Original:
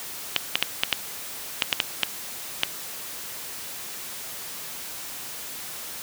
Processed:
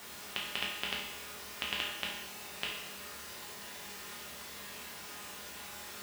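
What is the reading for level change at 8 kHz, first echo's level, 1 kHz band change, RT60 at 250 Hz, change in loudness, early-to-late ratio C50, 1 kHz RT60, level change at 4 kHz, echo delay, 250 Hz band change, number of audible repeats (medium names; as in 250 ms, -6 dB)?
-11.5 dB, no echo, -4.0 dB, 0.90 s, -8.5 dB, 2.5 dB, 0.85 s, -7.0 dB, no echo, -3.0 dB, no echo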